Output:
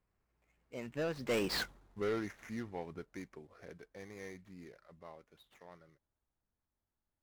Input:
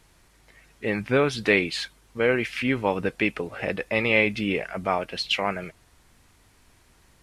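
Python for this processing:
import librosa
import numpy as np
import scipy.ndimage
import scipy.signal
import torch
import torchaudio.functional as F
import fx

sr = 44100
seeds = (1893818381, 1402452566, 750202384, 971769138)

y = scipy.signal.medfilt(x, 15)
y = fx.doppler_pass(y, sr, speed_mps=44, closest_m=3.0, pass_at_s=1.59)
y = 10.0 ** (-33.5 / 20.0) * np.tanh(y / 10.0 ** (-33.5 / 20.0))
y = F.gain(torch.from_numpy(y), 6.0).numpy()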